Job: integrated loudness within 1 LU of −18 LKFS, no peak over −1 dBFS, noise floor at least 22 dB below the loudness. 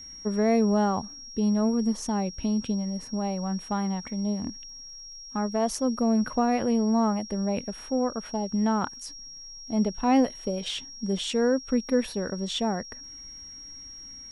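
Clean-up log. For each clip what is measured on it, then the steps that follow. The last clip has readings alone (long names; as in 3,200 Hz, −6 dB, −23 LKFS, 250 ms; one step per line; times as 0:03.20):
crackle rate 33 per second; interfering tone 5,600 Hz; level of the tone −41 dBFS; integrated loudness −27.0 LKFS; sample peak −12.5 dBFS; target loudness −18.0 LKFS
→ click removal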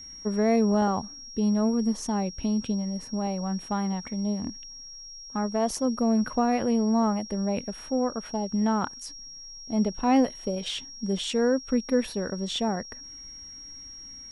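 crackle rate 0 per second; interfering tone 5,600 Hz; level of the tone −41 dBFS
→ notch filter 5,600 Hz, Q 30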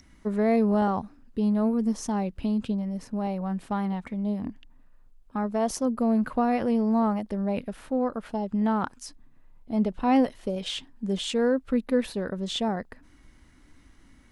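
interfering tone none found; integrated loudness −27.0 LKFS; sample peak −12.5 dBFS; target loudness −18.0 LKFS
→ level +9 dB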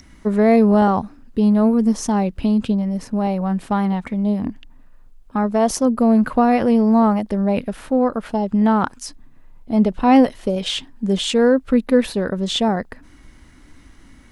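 integrated loudness −18.0 LKFS; sample peak −3.5 dBFS; background noise floor −47 dBFS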